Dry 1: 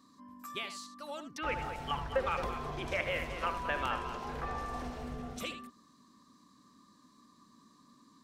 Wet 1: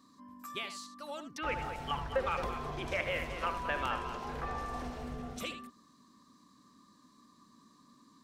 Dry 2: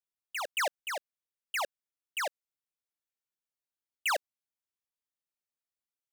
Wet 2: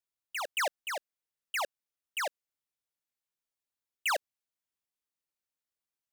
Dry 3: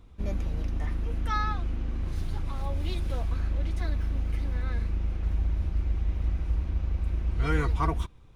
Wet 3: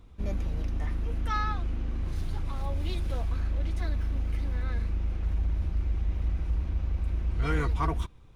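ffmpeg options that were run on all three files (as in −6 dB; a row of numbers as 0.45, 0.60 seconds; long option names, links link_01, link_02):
-af "asoftclip=type=tanh:threshold=-17.5dB"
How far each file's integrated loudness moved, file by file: 0.0, 0.0, −1.0 LU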